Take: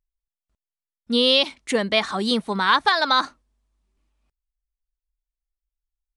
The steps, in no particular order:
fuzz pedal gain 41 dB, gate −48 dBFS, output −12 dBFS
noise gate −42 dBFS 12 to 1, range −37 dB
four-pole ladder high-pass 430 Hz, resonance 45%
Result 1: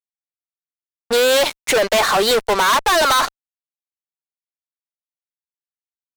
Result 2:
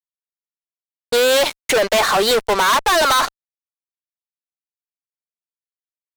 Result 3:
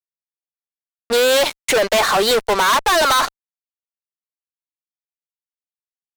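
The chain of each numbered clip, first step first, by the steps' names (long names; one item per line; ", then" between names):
four-pole ladder high-pass, then fuzz pedal, then noise gate
four-pole ladder high-pass, then noise gate, then fuzz pedal
noise gate, then four-pole ladder high-pass, then fuzz pedal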